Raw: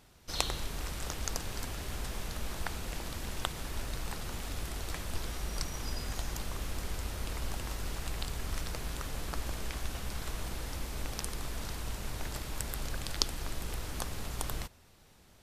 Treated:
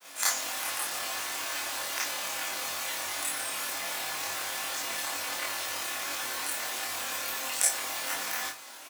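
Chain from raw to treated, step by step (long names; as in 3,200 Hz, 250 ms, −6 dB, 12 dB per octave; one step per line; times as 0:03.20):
high-pass filter 440 Hz 12 dB per octave
in parallel at 0 dB: compressor whose output falls as the input rises −50 dBFS, ratio −0.5
on the sum: granular cloud, spray 27 ms, pitch spread up and down by 0 semitones
double-tracking delay 36 ms −2.5 dB
four-comb reverb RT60 0.36 s, DRR −6 dB
wrong playback speed 45 rpm record played at 78 rpm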